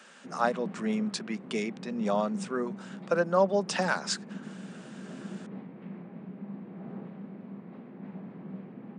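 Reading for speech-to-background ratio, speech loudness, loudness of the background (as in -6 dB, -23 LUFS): 13.0 dB, -30.0 LUFS, -43.0 LUFS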